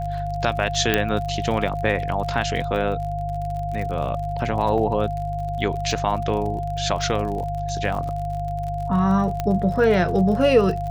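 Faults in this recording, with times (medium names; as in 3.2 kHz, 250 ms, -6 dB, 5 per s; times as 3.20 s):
crackle 49 per s -30 dBFS
hum 50 Hz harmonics 3 -29 dBFS
whine 700 Hz -27 dBFS
0.94 s: pop -4 dBFS
4.78 s: dropout 2.5 ms
9.40 s: pop -11 dBFS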